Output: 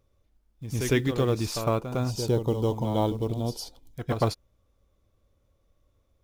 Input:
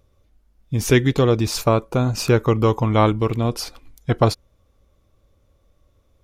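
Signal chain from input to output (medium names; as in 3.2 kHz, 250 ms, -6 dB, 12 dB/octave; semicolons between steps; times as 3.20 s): short-mantissa float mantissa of 4-bit; reverse echo 106 ms -8 dB; time-frequency box 2.11–3.94 s, 1–2.9 kHz -13 dB; trim -8.5 dB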